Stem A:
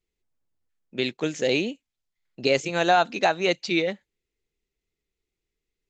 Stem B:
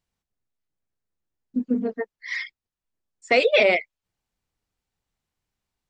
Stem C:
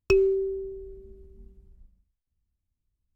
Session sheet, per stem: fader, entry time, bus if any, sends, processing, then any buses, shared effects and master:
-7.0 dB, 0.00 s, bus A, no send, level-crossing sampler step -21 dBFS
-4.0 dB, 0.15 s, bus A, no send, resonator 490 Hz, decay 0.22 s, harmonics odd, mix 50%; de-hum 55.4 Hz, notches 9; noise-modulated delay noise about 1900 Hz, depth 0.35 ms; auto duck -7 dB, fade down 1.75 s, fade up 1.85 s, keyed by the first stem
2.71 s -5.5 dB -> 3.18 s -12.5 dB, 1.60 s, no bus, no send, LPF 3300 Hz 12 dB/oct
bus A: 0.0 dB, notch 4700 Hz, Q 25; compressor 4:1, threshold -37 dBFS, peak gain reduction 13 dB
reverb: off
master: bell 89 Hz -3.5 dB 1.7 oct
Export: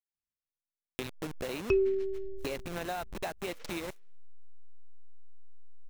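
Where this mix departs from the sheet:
stem A -7.0 dB -> +1.0 dB; stem B -4.0 dB -> -12.5 dB; master: missing bell 89 Hz -3.5 dB 1.7 oct

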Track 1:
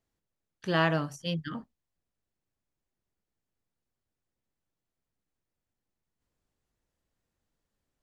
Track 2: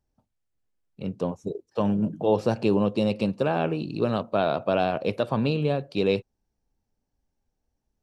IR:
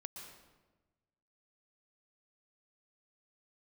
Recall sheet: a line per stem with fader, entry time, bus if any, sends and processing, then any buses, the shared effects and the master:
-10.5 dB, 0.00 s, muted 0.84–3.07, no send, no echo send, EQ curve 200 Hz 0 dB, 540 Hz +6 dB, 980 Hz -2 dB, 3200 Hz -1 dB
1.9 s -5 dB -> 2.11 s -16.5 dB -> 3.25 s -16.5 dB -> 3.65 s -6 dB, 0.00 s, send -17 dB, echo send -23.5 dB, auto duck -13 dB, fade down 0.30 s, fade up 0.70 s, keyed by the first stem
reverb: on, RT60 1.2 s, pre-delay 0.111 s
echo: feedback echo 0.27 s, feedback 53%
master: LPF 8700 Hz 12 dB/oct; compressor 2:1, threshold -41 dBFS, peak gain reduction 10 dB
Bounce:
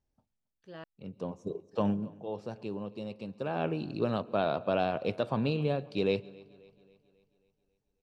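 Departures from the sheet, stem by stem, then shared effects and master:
stem 1 -10.5 dB -> -21.5 dB; master: missing compressor 2:1, threshold -41 dBFS, peak gain reduction 10 dB

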